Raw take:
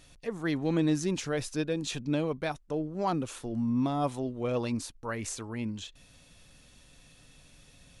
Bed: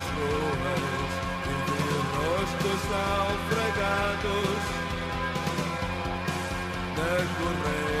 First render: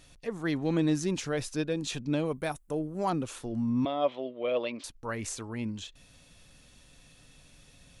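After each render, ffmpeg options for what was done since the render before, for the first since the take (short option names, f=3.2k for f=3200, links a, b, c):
-filter_complex "[0:a]asettb=1/sr,asplit=3[a][b][c];[a]atrim=end=2.254[d];[b]atrim=start=2.25:end=3.1,asetpts=PTS-STARTPTS,afade=t=in:d=0.004:c=qsin,afade=t=out:st=0.846:d=0.004:c=qsin,highshelf=f=6.9k:t=q:w=1.5:g=10[e];[c]atrim=start=3.096[f];[d][e]acrossfade=d=0.004:c1=hsin:c2=qsin[g];[g][f]acrossfade=d=0.004:c1=qsin:c2=hsin,asettb=1/sr,asplit=3[h][i][j];[h]atrim=end=3.854[k];[i]atrim=start=3.85:end=4.84,asetpts=PTS-STARTPTS,afade=t=in:d=0.004:c=qsin,afade=t=out:st=0.986:d=0.004:c=qsin,highpass=370,equalizer=f=590:t=q:w=4:g=9,equalizer=f=840:t=q:w=4:g=-6,equalizer=f=1.5k:t=q:w=4:g=-4,equalizer=f=2.2k:t=q:w=4:g=5,equalizer=f=3.2k:t=q:w=4:g=9,lowpass=f=3.6k:w=0.5412,lowpass=f=3.6k:w=1.3066[l];[j]atrim=start=4.836[m];[k][l]acrossfade=d=0.004:c1=hsin:c2=qsin[n];[n][m]acrossfade=d=0.004:c1=qsin:c2=hsin"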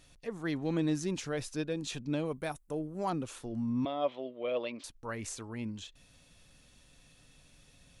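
-af "volume=-4dB"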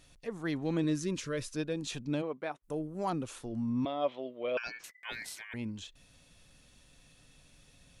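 -filter_complex "[0:a]asettb=1/sr,asplit=3[a][b][c];[a]atrim=end=0.844[d];[b]atrim=start=0.84:end=1.56,asetpts=PTS-STARTPTS,afade=t=in:d=0.004:c=qsin,afade=t=out:st=0.716:d=0.004:c=qsin,asuperstop=centerf=780:order=12:qfactor=2.8[e];[c]atrim=start=1.556[f];[d][e]acrossfade=d=0.004:c1=hsin:c2=qsin[g];[g][f]acrossfade=d=0.004:c1=qsin:c2=hsin,asplit=3[h][i][j];[h]afade=t=out:st=2.21:d=0.02[k];[i]highpass=280,lowpass=2.9k,afade=t=in:st=2.21:d=0.02,afade=t=out:st=2.62:d=0.02[l];[j]afade=t=in:st=2.62:d=0.02[m];[k][l][m]amix=inputs=3:normalize=0,asettb=1/sr,asplit=3[n][o][p];[n]atrim=end=4.574[q];[o]atrim=start=4.57:end=5.54,asetpts=PTS-STARTPTS,afade=t=in:d=0.004:c=qsin,afade=t=out:st=0.966:d=0.004:c=qsin,aeval=exprs='val(0)*sin(2*PI*2000*n/s)':c=same[r];[p]atrim=start=5.536[s];[q][r]acrossfade=d=0.004:c1=hsin:c2=qsin[t];[t][s]acrossfade=d=0.004:c1=qsin:c2=hsin"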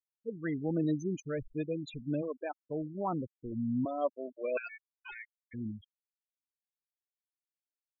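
-af "afftfilt=real='re*gte(hypot(re,im),0.0316)':imag='im*gte(hypot(re,im),0.0316)':win_size=1024:overlap=0.75,equalizer=f=3.3k:w=5.3:g=-8.5"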